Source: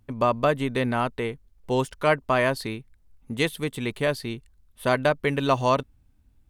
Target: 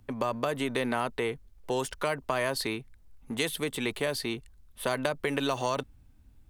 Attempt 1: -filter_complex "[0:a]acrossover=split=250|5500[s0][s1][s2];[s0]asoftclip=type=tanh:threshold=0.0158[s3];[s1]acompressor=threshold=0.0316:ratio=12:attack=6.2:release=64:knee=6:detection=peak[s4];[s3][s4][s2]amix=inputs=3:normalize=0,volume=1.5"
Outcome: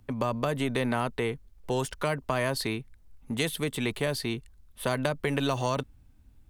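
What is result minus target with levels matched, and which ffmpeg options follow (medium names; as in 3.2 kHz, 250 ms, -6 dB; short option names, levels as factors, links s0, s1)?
saturation: distortion -6 dB
-filter_complex "[0:a]acrossover=split=250|5500[s0][s1][s2];[s0]asoftclip=type=tanh:threshold=0.00473[s3];[s1]acompressor=threshold=0.0316:ratio=12:attack=6.2:release=64:knee=6:detection=peak[s4];[s3][s4][s2]amix=inputs=3:normalize=0,volume=1.5"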